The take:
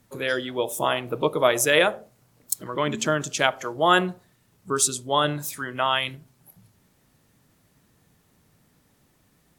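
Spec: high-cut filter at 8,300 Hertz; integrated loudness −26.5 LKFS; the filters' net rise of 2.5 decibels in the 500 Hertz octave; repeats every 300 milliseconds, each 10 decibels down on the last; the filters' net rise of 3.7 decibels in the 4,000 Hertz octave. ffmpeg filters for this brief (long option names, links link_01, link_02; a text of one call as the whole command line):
ffmpeg -i in.wav -af "lowpass=8300,equalizer=frequency=500:width_type=o:gain=3,equalizer=frequency=4000:width_type=o:gain=5,aecho=1:1:300|600|900|1200:0.316|0.101|0.0324|0.0104,volume=-4.5dB" out.wav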